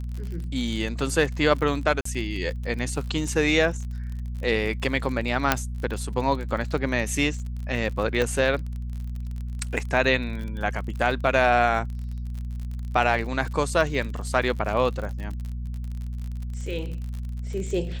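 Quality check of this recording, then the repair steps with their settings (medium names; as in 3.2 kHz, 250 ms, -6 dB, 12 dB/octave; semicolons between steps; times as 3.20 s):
crackle 42 per s -32 dBFS
hum 60 Hz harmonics 4 -31 dBFS
2.01–2.05 s: dropout 44 ms
5.52 s: pop -2 dBFS
8.22 s: pop -12 dBFS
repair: de-click; de-hum 60 Hz, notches 4; interpolate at 2.01 s, 44 ms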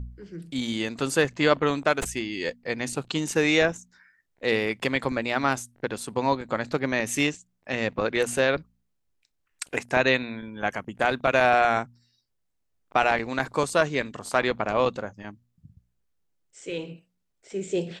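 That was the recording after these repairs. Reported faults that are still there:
5.52 s: pop
8.22 s: pop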